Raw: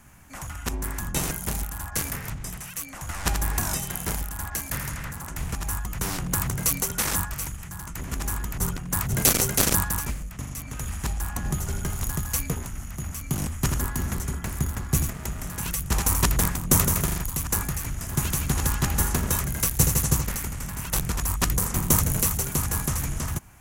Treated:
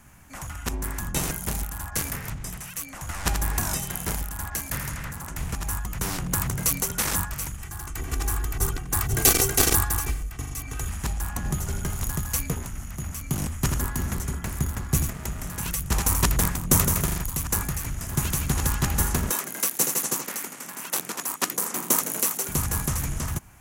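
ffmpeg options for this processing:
-filter_complex "[0:a]asettb=1/sr,asplit=3[s0][s1][s2];[s0]atrim=end=7.614[s3];[s1]atrim=start=7.61:end=10.88,asetpts=PTS-STARTPTS,afade=t=in:d=0.004:c=qsin,afade=t=out:st=3.266:d=0.004:c=qsin,aecho=1:1:2.6:0.65,atrim=end_sample=144207[s4];[s2]atrim=start=10.876[s5];[s3][s4]acrossfade=d=0.004:c1=hsin:c2=qsin[s6];[s6][s5]acrossfade=d=0.004:c1=qsin:c2=hsin,asettb=1/sr,asplit=3[s7][s8][s9];[s7]atrim=end=19.304[s10];[s8]atrim=start=19.3:end=22.49,asetpts=PTS-STARTPTS,afade=t=in:d=0.004:c=qsin,afade=t=out:st=3.186:d=0.004:c=qsin,highpass=f=250:w=0.5412,highpass=f=250:w=1.3066[s11];[s9]atrim=start=22.486[s12];[s10][s11]acrossfade=d=0.004:c1=hsin:c2=qsin[s13];[s13][s12]acrossfade=d=0.004:c1=qsin:c2=hsin"

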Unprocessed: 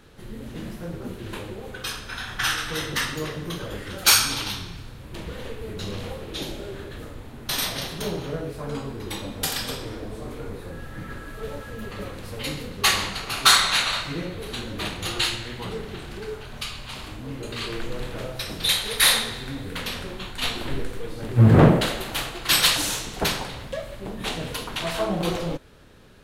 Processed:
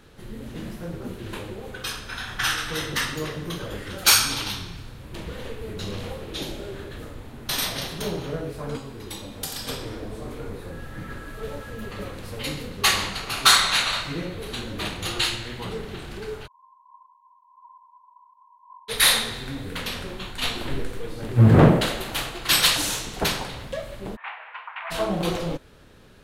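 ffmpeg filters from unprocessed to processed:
-filter_complex "[0:a]asettb=1/sr,asplit=3[s0][s1][s2];[s0]atrim=end=8.764[s3];[s1]atrim=start=8.76:end=9.67,asetpts=PTS-STARTPTS,afade=t=in:d=0.004:c=qsin,afade=t=out:st=0.906:d=0.004:c=qsin,acrossover=split=310|1500|3400[s4][s5][s6][s7];[s4]acompressor=threshold=0.0112:ratio=3[s8];[s5]acompressor=threshold=0.00794:ratio=3[s9];[s6]acompressor=threshold=0.00251:ratio=3[s10];[s7]acompressor=threshold=0.0282:ratio=3[s11];[s8][s9][s10][s11]amix=inputs=4:normalize=0[s12];[s2]atrim=start=9.666[s13];[s3][s12]acrossfade=d=0.004:c1=hsin:c2=qsin[s14];[s14][s13]acrossfade=d=0.004:c1=qsin:c2=hsin,asplit=3[s15][s16][s17];[s15]afade=t=out:st=16.46:d=0.02[s18];[s16]asuperpass=centerf=1000:order=12:qfactor=7.2,afade=t=in:st=16.46:d=0.02,afade=t=out:st=18.88:d=0.02[s19];[s17]afade=t=in:st=18.88:d=0.02[s20];[s18][s19][s20]amix=inputs=3:normalize=0,asplit=3[s21][s22][s23];[s21]afade=t=out:st=24.15:d=0.02[s24];[s22]asuperpass=centerf=1400:order=8:qfactor=0.85,afade=t=in:st=24.15:d=0.02,afade=t=out:st=24.9:d=0.02[s25];[s23]afade=t=in:st=24.9:d=0.02[s26];[s24][s25][s26]amix=inputs=3:normalize=0"

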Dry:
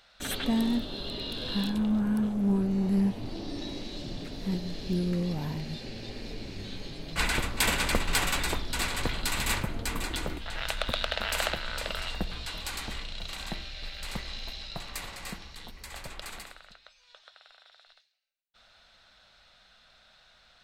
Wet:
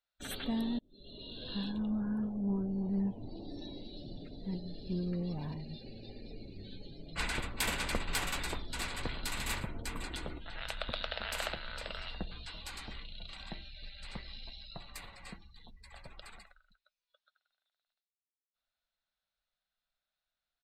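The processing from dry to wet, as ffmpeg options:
-filter_complex "[0:a]asettb=1/sr,asplit=3[s0][s1][s2];[s0]atrim=end=4.904[s3];[s1]atrim=start=4.9:end=5.54,asetpts=PTS-STARTPTS,afade=t=in:d=0.004:c=qsin,afade=t=out:st=0.636:d=0.004:c=qsin,aeval=exprs='val(0)+0.5*0.01*sgn(val(0))':c=same[s4];[s2]atrim=start=5.536[s5];[s3][s4]acrossfade=d=0.004:c1=hsin:c2=qsin[s6];[s6][s5]acrossfade=d=0.004:c1=qsin:c2=hsin,asplit=3[s7][s8][s9];[s7]afade=t=out:st=9.07:d=0.02[s10];[s8]aecho=1:1:116:0.188,afade=t=in:st=9.07:d=0.02,afade=t=out:st=11.53:d=0.02[s11];[s9]afade=t=in:st=11.53:d=0.02[s12];[s10][s11][s12]amix=inputs=3:normalize=0,asplit=2[s13][s14];[s13]atrim=end=0.79,asetpts=PTS-STARTPTS,afade=t=out:st=0.786:d=0.004:c=hsin[s15];[s14]atrim=start=0.79,asetpts=PTS-STARTPTS,afade=t=in:d=0.95:c=qsin[s16];[s15][s16]concat=n=2:v=0:a=1,afftdn=nr=25:nf=-44,volume=0.422"

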